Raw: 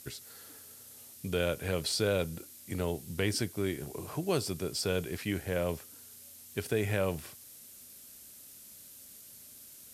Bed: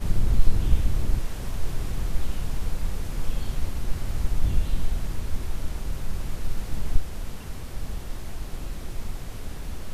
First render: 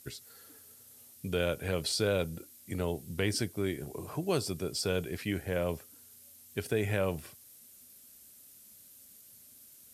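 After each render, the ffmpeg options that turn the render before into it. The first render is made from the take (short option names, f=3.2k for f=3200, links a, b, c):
-af "afftdn=nr=6:nf=-52"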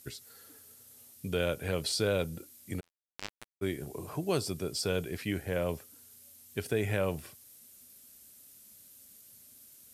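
-filter_complex "[0:a]asplit=3[a][b][c];[a]afade=t=out:st=2.79:d=0.02[d];[b]acrusher=bits=2:mix=0:aa=0.5,afade=t=in:st=2.79:d=0.02,afade=t=out:st=3.61:d=0.02[e];[c]afade=t=in:st=3.61:d=0.02[f];[d][e][f]amix=inputs=3:normalize=0"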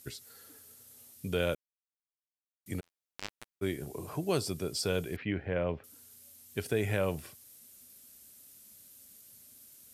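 -filter_complex "[0:a]asettb=1/sr,asplit=3[a][b][c];[a]atrim=end=5.164[d];[b]atrim=start=5.16:end=5.84,asetpts=PTS-STARTPTS,afade=t=in:d=0.004:c=qsin,afade=t=out:st=0.676:d=0.004:c=qsin,lowpass=f=2.9k:w=0.5412,lowpass=f=2.9k:w=1.3066[e];[c]atrim=start=5.836[f];[d][e]acrossfade=d=0.004:c1=hsin:c2=qsin[g];[g][f]acrossfade=d=0.004:c1=qsin:c2=hsin,asplit=3[h][i][j];[h]atrim=end=1.55,asetpts=PTS-STARTPTS,afade=t=out:st=1.546:d=0.004:c=hsin[k];[i]atrim=start=1.55:end=2.66,asetpts=PTS-STARTPTS,volume=0[l];[j]atrim=start=2.66,asetpts=PTS-STARTPTS,afade=t=in:d=0.004:c=hsin[m];[k][l][m]concat=n=3:v=0:a=1"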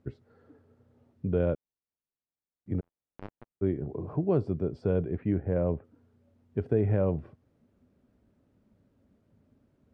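-af "lowpass=1.4k,tiltshelf=f=850:g=7.5"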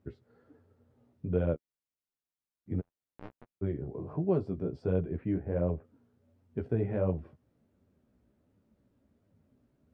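-af "flanger=delay=9.9:depth=7.6:regen=-9:speed=1.4:shape=triangular"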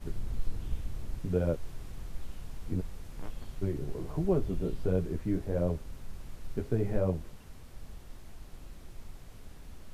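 -filter_complex "[1:a]volume=-14dB[a];[0:a][a]amix=inputs=2:normalize=0"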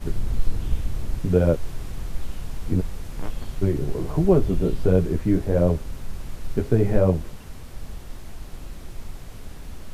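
-af "volume=10.5dB"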